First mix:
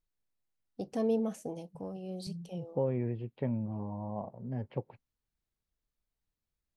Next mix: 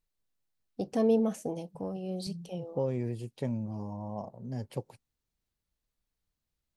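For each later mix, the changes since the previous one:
first voice +4.5 dB; second voice: remove LPF 2600 Hz 24 dB/oct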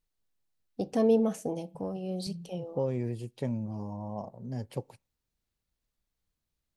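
reverb: on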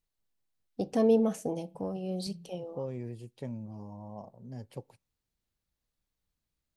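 second voice -6.5 dB

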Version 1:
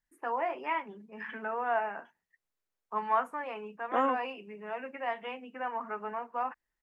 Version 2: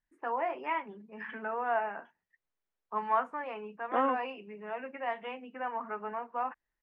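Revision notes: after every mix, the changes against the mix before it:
master: add air absorption 120 m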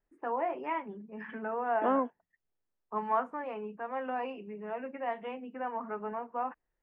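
second voice: entry -2.10 s; master: add tilt shelf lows +5.5 dB, about 760 Hz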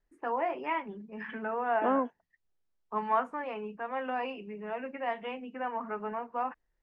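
first voice: add high shelf 2500 Hz +11.5 dB; master: add low shelf 91 Hz +7.5 dB

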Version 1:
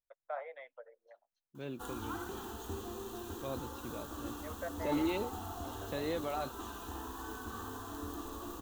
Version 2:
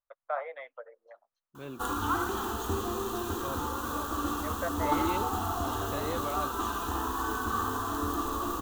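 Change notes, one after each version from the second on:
first voice +6.0 dB; background +9.5 dB; master: add bell 1200 Hz +7.5 dB 0.48 oct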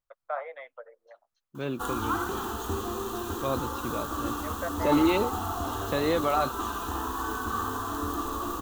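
second voice +10.0 dB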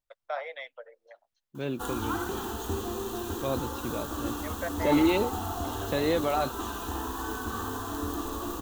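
first voice: remove LPF 1600 Hz 12 dB/oct; master: add bell 1200 Hz -7.5 dB 0.48 oct

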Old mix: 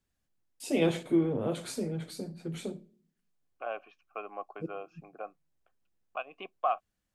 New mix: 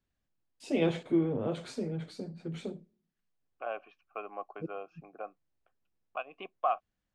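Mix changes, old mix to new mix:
first voice: send -9.0 dB; master: add air absorption 91 m

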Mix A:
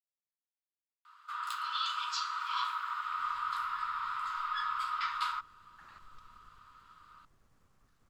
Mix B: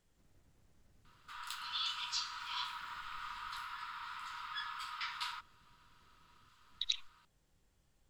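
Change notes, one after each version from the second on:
speech: entry -3.00 s; master: add bell 1200 Hz -13 dB 0.63 oct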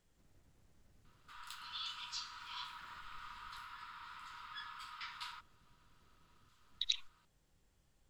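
background -6.0 dB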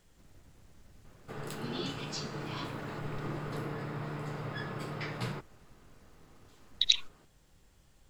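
speech +10.5 dB; background: remove rippled Chebyshev high-pass 930 Hz, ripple 9 dB

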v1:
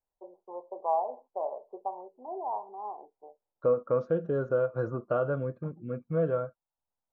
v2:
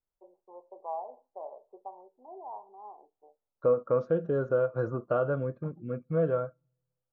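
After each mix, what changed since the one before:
first voice -10.0 dB; reverb: on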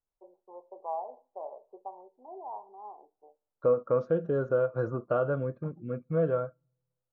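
first voice: send +6.5 dB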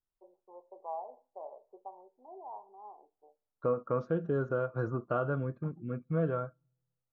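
first voice -4.5 dB; second voice: add bell 540 Hz -8.5 dB 0.47 oct

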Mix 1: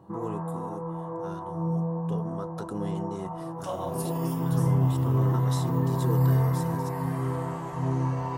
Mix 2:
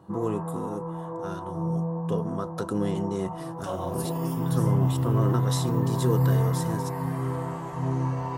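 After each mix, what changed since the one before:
first voice +6.5 dB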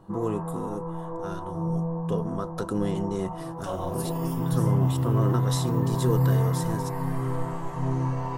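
master: remove HPF 62 Hz

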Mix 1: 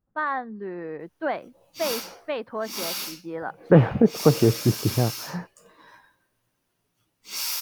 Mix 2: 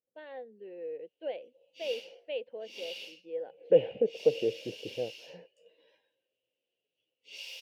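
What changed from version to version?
master: add double band-pass 1200 Hz, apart 2.5 oct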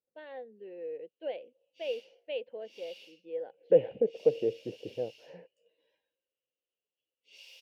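background -9.5 dB

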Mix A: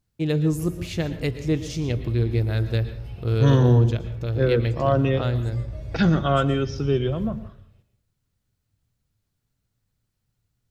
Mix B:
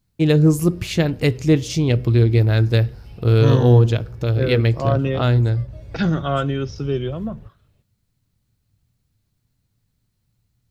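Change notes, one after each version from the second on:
first voice +9.0 dB; reverb: off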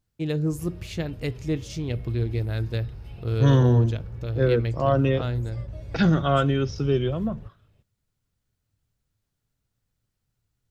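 first voice -11.5 dB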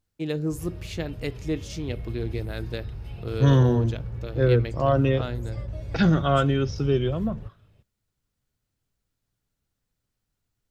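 first voice: add HPF 180 Hz 12 dB/oct; background +3.0 dB

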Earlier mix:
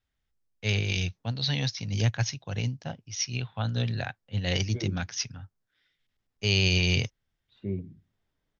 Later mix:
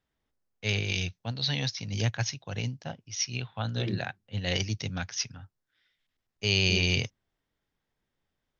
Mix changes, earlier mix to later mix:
second voice: entry -0.95 s; master: add low shelf 200 Hz -4.5 dB

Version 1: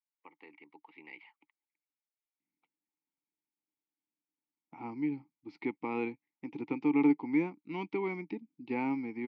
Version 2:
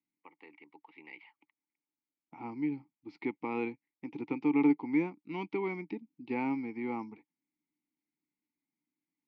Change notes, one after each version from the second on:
second voice: entry -2.40 s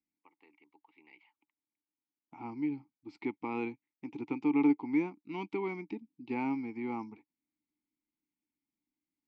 first voice -7.5 dB; master: remove speaker cabinet 100–5700 Hz, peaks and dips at 160 Hz +5 dB, 510 Hz +6 dB, 1900 Hz +5 dB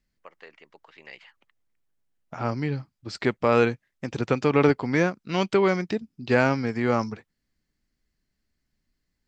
master: remove vowel filter u

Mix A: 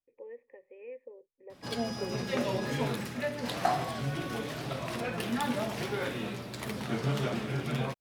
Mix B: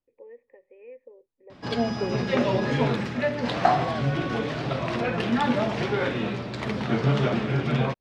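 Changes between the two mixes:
second voice +11.0 dB; background +8.5 dB; master: add air absorption 150 m

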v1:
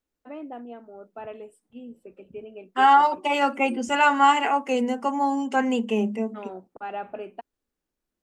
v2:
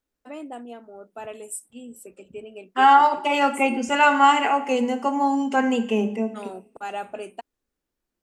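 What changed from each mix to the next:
first voice: remove air absorption 400 m; reverb: on, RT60 0.75 s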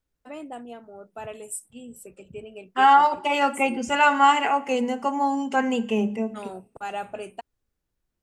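second voice: send -7.0 dB; master: add resonant low shelf 180 Hz +8 dB, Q 1.5

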